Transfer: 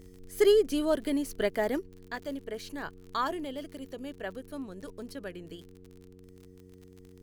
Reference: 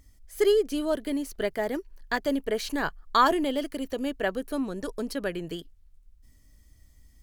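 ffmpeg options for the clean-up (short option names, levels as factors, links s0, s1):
-af "adeclick=t=4,bandreject=f=92.2:t=h:w=4,bandreject=f=184.4:t=h:w=4,bandreject=f=276.6:t=h:w=4,bandreject=f=368.8:t=h:w=4,bandreject=f=461:t=h:w=4,agate=range=0.0891:threshold=0.00562,asetnsamples=n=441:p=0,asendcmd='1.86 volume volume 10dB',volume=1"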